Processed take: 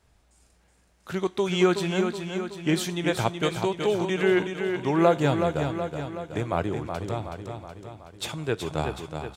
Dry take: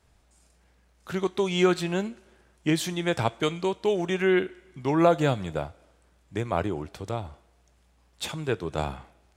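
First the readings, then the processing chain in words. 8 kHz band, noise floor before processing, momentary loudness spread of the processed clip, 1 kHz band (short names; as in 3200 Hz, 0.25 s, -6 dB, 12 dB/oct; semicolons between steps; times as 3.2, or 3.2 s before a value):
+1.0 dB, -63 dBFS, 13 LU, +1.0 dB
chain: on a send: feedback echo 0.373 s, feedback 56%, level -6.5 dB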